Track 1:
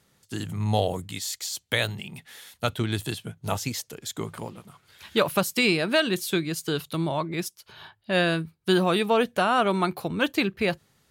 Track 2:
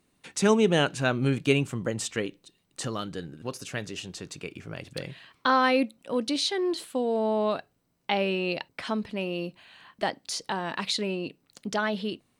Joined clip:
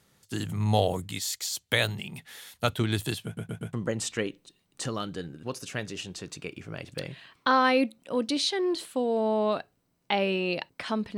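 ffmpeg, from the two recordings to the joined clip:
-filter_complex "[0:a]apad=whole_dur=11.17,atrim=end=11.17,asplit=4[a][b][c][d];[a]atrim=end=3.372[e];[b]atrim=start=3.248:end=3.372[f];[c]atrim=start=3.248:end=3.372[g];[d]atrim=start=3.248:end=3.372[h];[1:a]atrim=start=1.718:end=9.16[i];[e][f]acrossfade=d=0.004:c1=hsin:c2=hsin[j];[j][g]acrossfade=d=0.004:c1=hsin:c2=hsin[k];[k][h]acrossfade=d=0.004:c1=hsin:c2=hsin[l];[l][i]acrossfade=d=0.004:c1=hsin:c2=hsin"

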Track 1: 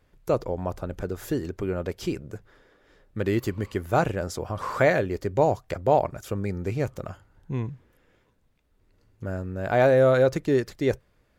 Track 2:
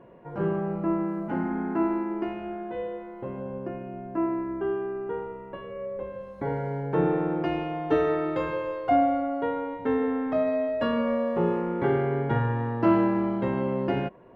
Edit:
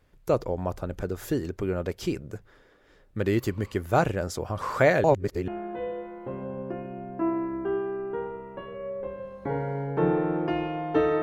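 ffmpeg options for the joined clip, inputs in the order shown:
-filter_complex "[0:a]apad=whole_dur=11.22,atrim=end=11.22,asplit=2[a][b];[a]atrim=end=5.042[c];[b]atrim=start=5.038:end=5.482,asetpts=PTS-STARTPTS,areverse[d];[1:a]atrim=start=2.438:end=8.18[e];[c][d]acrossfade=d=0.004:c1=hsin:c2=hsin[f];[f][e]acrossfade=d=0.004:c1=hsin:c2=hsin"

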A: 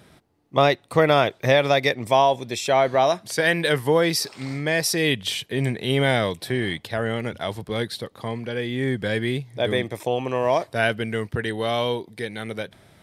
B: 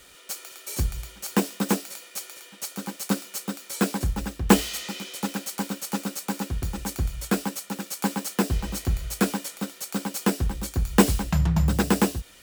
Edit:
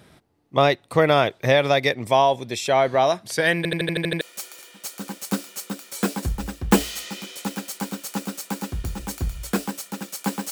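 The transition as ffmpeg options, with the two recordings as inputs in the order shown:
-filter_complex "[0:a]apad=whole_dur=10.51,atrim=end=10.51,asplit=8[a][b][c][d][e][f][g][h];[a]atrim=end=3.652[i];[b]atrim=start=3.568:end=3.652[j];[c]atrim=start=3.568:end=3.652[k];[d]atrim=start=3.568:end=3.652[l];[e]atrim=start=3.568:end=3.652[m];[f]atrim=start=3.568:end=3.652[n];[g]atrim=start=3.568:end=3.652[o];[h]atrim=start=3.568:end=3.652[p];[1:a]atrim=start=1.988:end=8.29[q];[i][j]acrossfade=d=0.004:c1=hsin:c2=hsin[r];[r][k]acrossfade=d=0.004:c1=hsin:c2=hsin[s];[s][l]acrossfade=d=0.004:c1=hsin:c2=hsin[t];[t][m]acrossfade=d=0.004:c1=hsin:c2=hsin[u];[u][n]acrossfade=d=0.004:c1=hsin:c2=hsin[v];[v][o]acrossfade=d=0.004:c1=hsin:c2=hsin[w];[w][p]acrossfade=d=0.004:c1=hsin:c2=hsin[x];[x][q]acrossfade=d=0.004:c1=hsin:c2=hsin"

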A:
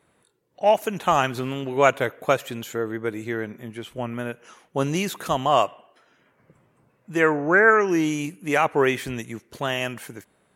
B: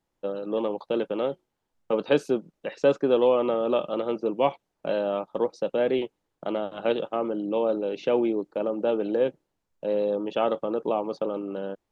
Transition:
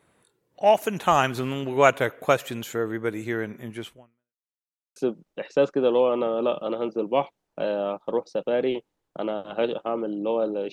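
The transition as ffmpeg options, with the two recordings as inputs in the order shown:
-filter_complex "[0:a]apad=whole_dur=10.72,atrim=end=10.72,asplit=2[a][b];[a]atrim=end=4.51,asetpts=PTS-STARTPTS,afade=t=out:st=3.87:d=0.64:c=exp[c];[b]atrim=start=4.51:end=4.96,asetpts=PTS-STARTPTS,volume=0[d];[1:a]atrim=start=2.23:end=7.99,asetpts=PTS-STARTPTS,afade=t=in:d=0.004:c=hsin[e];[c][d][e]concat=n=3:v=0:a=1"

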